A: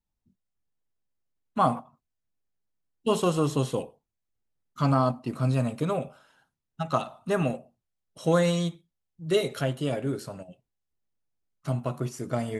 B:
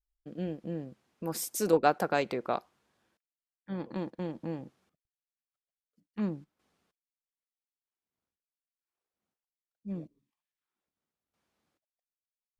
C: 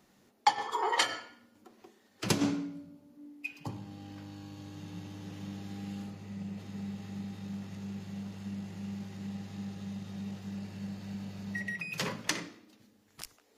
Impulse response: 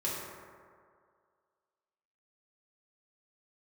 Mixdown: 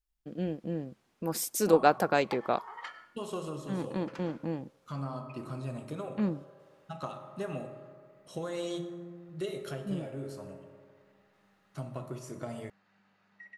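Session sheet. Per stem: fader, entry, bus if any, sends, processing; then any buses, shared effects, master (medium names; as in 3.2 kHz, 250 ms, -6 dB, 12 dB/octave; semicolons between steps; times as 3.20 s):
-9.5 dB, 0.10 s, send -8.5 dB, de-hum 57.62 Hz, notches 3; compression 6:1, threshold -27 dBFS, peak gain reduction 9.5 dB; auto duck -6 dB, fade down 0.20 s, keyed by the second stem
+2.0 dB, 0.00 s, no send, none
-9.5 dB, 1.85 s, no send, band-pass filter 1.4 kHz, Q 1.8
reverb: on, RT60 2.1 s, pre-delay 3 ms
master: none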